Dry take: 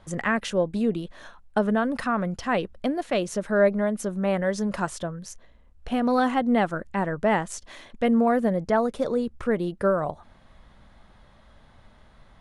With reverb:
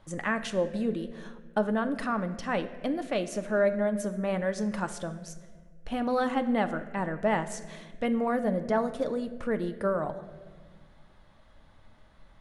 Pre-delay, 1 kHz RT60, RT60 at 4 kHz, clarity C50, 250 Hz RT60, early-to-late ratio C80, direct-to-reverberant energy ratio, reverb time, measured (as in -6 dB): 3 ms, 1.3 s, 1.1 s, 12.5 dB, 2.1 s, 14.5 dB, 8.0 dB, 1.5 s